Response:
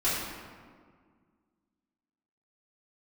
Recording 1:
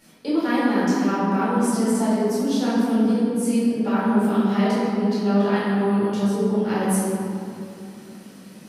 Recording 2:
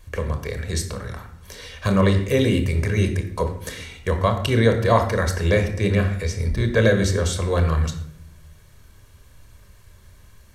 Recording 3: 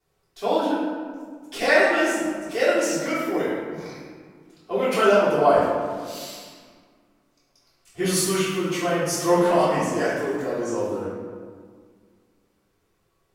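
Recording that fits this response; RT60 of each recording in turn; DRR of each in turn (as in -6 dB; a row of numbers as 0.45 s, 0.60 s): 3; 2.8 s, 0.70 s, 1.8 s; -11.5 dB, 6.0 dB, -12.5 dB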